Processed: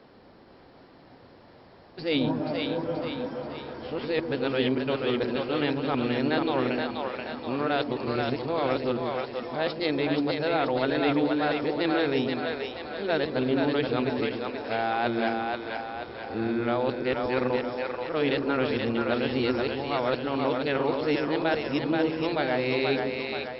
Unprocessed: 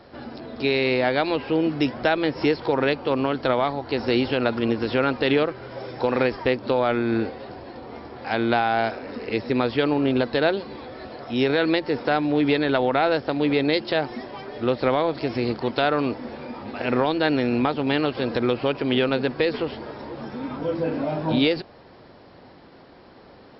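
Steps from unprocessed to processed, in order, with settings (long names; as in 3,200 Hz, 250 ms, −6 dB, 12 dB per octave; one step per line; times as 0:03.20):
played backwards from end to start
echo with a time of its own for lows and highs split 440 Hz, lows 125 ms, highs 480 ms, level −3.5 dB
level −6 dB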